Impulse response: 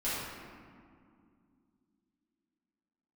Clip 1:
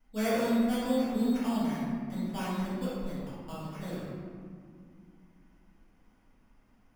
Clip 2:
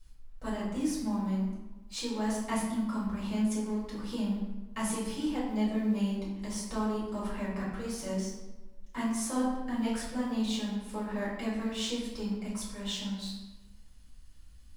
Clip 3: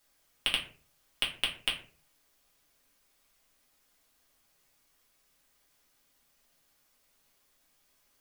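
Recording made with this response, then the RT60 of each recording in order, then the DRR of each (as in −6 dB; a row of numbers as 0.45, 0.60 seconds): 1; 2.3, 1.1, 0.45 seconds; −12.0, −8.5, −3.5 decibels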